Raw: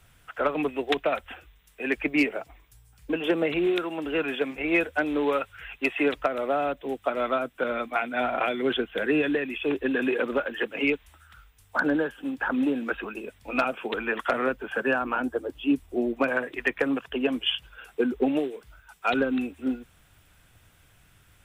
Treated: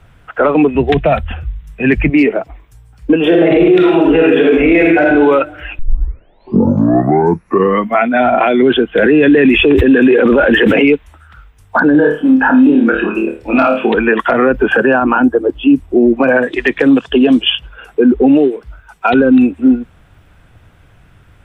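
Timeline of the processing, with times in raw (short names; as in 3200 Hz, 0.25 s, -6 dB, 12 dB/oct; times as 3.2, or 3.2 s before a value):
0.75–2.1 resonant low shelf 210 Hz +11.5 dB, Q 1.5
3.19–5.04 reverb throw, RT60 1.1 s, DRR -2.5 dB
5.79 tape start 2.30 s
8.98–10.86 fast leveller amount 100%
11.92–13.95 flutter echo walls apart 4.6 m, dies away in 0.37 s
14.54–15 gain +6 dB
16.42–17.42 band shelf 5500 Hz +9 dB
whole clip: LPF 1100 Hz 6 dB/oct; spectral noise reduction 7 dB; maximiser +23 dB; gain -1 dB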